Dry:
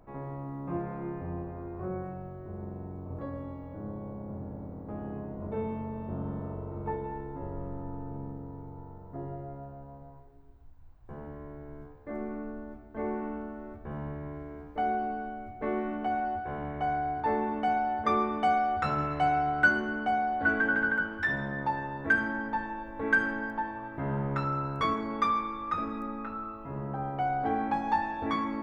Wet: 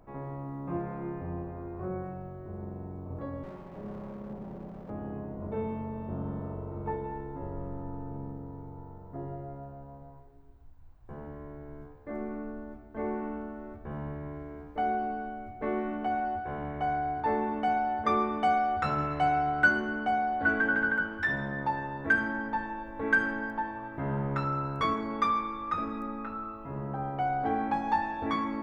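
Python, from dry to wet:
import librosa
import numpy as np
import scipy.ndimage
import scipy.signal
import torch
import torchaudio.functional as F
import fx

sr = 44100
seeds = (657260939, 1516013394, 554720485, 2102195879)

y = fx.lower_of_two(x, sr, delay_ms=5.2, at=(3.43, 4.9))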